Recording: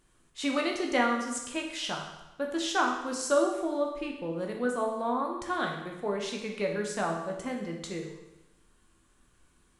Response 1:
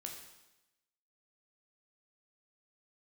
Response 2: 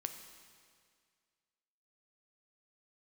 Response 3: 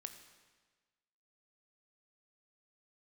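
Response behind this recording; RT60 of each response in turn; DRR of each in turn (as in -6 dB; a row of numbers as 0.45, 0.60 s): 1; 0.95, 2.0, 1.4 s; 1.0, 6.0, 7.0 dB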